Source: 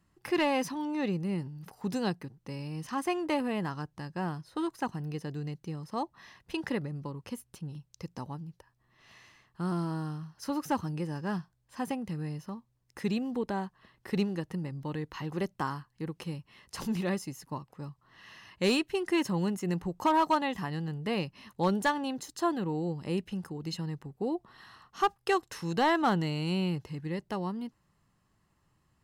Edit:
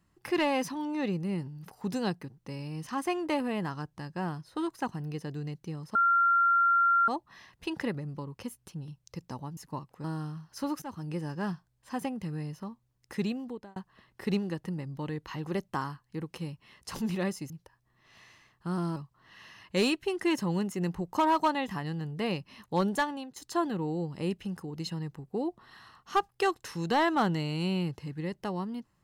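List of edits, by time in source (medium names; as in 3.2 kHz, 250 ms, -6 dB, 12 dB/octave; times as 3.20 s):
5.95 s: add tone 1.38 kHz -20.5 dBFS 1.13 s
8.44–9.90 s: swap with 17.36–17.83 s
10.68–11.02 s: fade in, from -17.5 dB
13.08–13.62 s: fade out
21.71–22.23 s: fade out equal-power, to -17.5 dB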